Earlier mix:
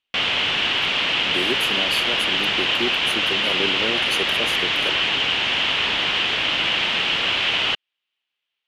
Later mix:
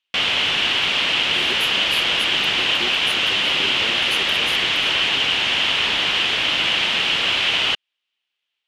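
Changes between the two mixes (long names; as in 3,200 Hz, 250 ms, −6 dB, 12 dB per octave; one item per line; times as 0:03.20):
speech −8.5 dB
master: add high-shelf EQ 5,800 Hz +9.5 dB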